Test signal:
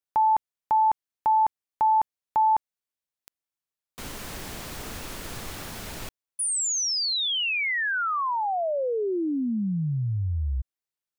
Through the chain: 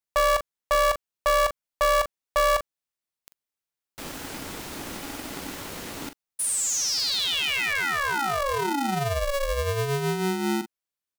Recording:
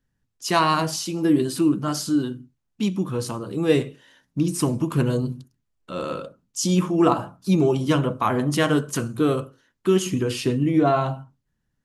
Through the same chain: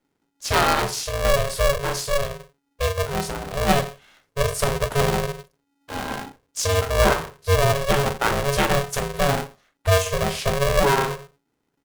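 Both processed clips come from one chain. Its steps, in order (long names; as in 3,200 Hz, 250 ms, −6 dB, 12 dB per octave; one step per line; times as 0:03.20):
double-tracking delay 42 ms −10 dB
ring modulator with a square carrier 280 Hz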